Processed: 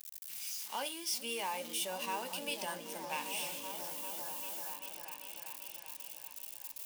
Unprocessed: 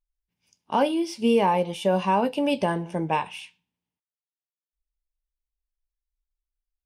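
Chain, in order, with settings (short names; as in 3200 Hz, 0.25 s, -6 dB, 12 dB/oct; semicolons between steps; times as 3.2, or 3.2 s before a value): zero-crossing step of -35 dBFS; differentiator; on a send: repeats that get brighter 0.39 s, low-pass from 200 Hz, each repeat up 1 oct, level 0 dB; on the sum: gain +1 dB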